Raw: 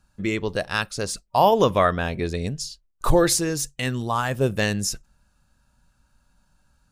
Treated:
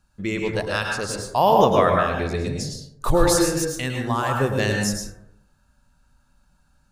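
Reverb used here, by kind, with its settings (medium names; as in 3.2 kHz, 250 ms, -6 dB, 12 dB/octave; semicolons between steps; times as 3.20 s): plate-style reverb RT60 0.76 s, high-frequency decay 0.35×, pre-delay 95 ms, DRR 0.5 dB; trim -1.5 dB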